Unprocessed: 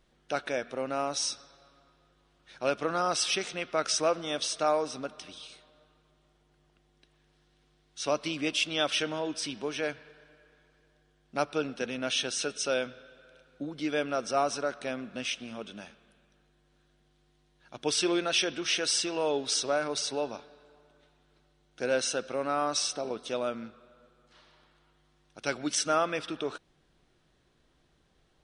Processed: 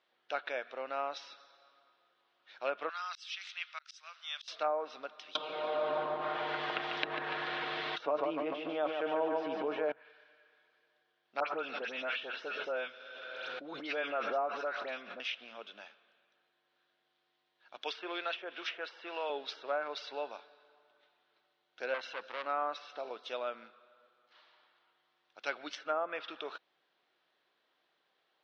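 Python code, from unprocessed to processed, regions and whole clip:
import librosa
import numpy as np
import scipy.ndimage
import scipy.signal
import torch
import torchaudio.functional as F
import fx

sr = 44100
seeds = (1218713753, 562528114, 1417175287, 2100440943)

y = fx.chain(x, sr, fx.bessel_highpass(hz=1800.0, order=4),
    fx.high_shelf(hz=5900.0, db=9.0),
    fx.auto_swell(attack_ms=461.0), at=(2.89, 4.48))
y = fx.chain(y, sr, fx.comb(ms=6.4, depth=0.53),
    fx.echo_feedback(ms=145, feedback_pct=50, wet_db=-6.5),
    fx.env_flatten(amount_pct=100), at=(5.35, 9.92))
y = fx.chain(y, sr, fx.dispersion(late='highs', ms=84.0, hz=2300.0),
    fx.pre_swell(db_per_s=22.0), at=(11.4, 15.2))
y = fx.chain(y, sr, fx.highpass(hz=420.0, slope=6),
    fx.band_squash(depth_pct=40), at=(17.81, 19.3))
y = fx.chain(y, sr, fx.low_shelf(hz=120.0, db=10.5),
    fx.transformer_sat(knee_hz=3400.0), at=(21.94, 22.46))
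y = scipy.signal.sosfilt(scipy.signal.butter(2, 630.0, 'highpass', fs=sr, output='sos'), y)
y = fx.env_lowpass_down(y, sr, base_hz=890.0, full_db=-24.0)
y = scipy.signal.sosfilt(scipy.signal.butter(4, 4400.0, 'lowpass', fs=sr, output='sos'), y)
y = y * librosa.db_to_amplitude(-2.5)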